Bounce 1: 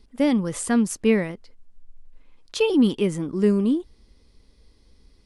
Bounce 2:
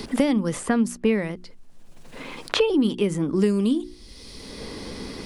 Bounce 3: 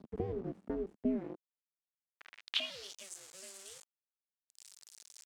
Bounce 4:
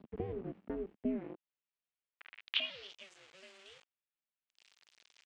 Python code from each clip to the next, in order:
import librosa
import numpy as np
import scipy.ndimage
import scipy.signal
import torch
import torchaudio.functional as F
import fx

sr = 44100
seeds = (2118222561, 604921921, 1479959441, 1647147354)

y1 = fx.hum_notches(x, sr, base_hz=60, count=6)
y1 = fx.band_squash(y1, sr, depth_pct=100)
y2 = y1 * np.sin(2.0 * np.pi * 190.0 * np.arange(len(y1)) / sr)
y2 = np.where(np.abs(y2) >= 10.0 ** (-29.5 / 20.0), y2, 0.0)
y2 = fx.filter_sweep_bandpass(y2, sr, from_hz=220.0, to_hz=7500.0, start_s=1.12, end_s=3.05, q=2.3)
y2 = y2 * 10.0 ** (-2.0 / 20.0)
y3 = fx.lowpass_res(y2, sr, hz=2800.0, q=1.8)
y3 = y3 * 10.0 ** (-2.5 / 20.0)